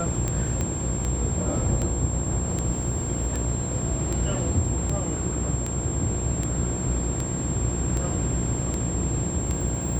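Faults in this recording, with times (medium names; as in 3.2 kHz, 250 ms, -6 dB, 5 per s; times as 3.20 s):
buzz 60 Hz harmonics 19 -30 dBFS
tick 78 rpm -15 dBFS
whine 7.5 kHz -32 dBFS
0.61 s: pop -15 dBFS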